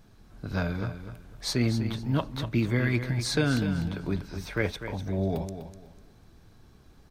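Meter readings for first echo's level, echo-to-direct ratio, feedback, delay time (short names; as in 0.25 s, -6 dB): -10.0 dB, -9.5 dB, 26%, 0.249 s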